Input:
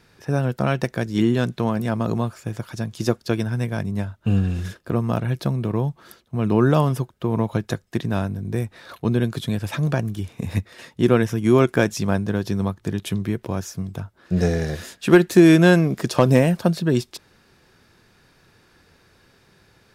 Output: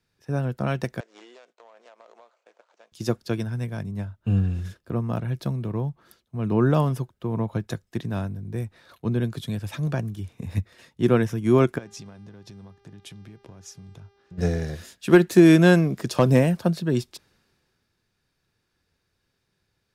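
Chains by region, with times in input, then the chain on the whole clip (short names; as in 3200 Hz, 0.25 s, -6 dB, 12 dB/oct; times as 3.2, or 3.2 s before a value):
1–2.92 median filter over 25 samples + elliptic band-pass 540–7300 Hz, stop band 60 dB + compressor 16:1, threshold -33 dBFS
11.77–14.37 LPF 8400 Hz + compressor 12:1, threshold -30 dBFS + buzz 400 Hz, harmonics 15, -50 dBFS -7 dB/oct
whole clip: low shelf 200 Hz +3.5 dB; three-band expander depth 40%; gain -6 dB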